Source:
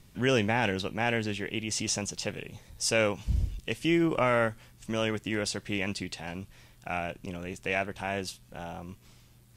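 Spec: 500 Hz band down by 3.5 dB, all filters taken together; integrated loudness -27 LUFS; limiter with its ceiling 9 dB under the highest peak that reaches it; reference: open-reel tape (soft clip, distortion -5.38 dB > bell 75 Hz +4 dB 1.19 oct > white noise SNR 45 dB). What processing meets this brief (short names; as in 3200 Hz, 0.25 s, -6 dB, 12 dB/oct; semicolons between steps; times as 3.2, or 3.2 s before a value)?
bell 500 Hz -4.5 dB; limiter -23.5 dBFS; soft clip -39.5 dBFS; bell 75 Hz +4 dB 1.19 oct; white noise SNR 45 dB; gain +16 dB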